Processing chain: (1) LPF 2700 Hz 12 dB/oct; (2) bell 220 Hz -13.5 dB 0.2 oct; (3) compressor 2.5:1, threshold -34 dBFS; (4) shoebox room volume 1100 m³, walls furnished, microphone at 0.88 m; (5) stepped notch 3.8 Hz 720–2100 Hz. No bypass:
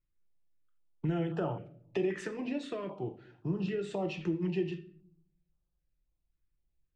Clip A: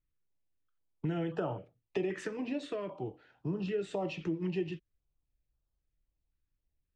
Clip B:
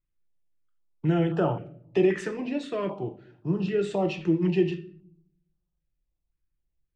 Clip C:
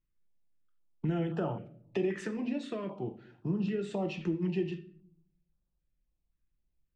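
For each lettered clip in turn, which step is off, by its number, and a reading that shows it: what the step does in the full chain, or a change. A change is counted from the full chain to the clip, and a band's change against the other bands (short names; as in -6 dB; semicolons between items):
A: 4, 125 Hz band -2.0 dB; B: 3, mean gain reduction 6.5 dB; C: 2, 250 Hz band +1.5 dB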